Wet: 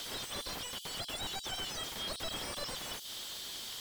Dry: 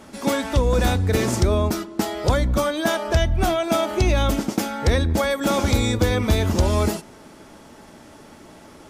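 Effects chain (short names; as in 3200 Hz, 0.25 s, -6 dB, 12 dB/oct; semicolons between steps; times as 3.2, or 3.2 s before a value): steep high-pass 1300 Hz 96 dB/oct; upward compressor, threshold -29 dBFS; speed mistake 33 rpm record played at 78 rpm; slew limiter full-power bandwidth 34 Hz; gain +2.5 dB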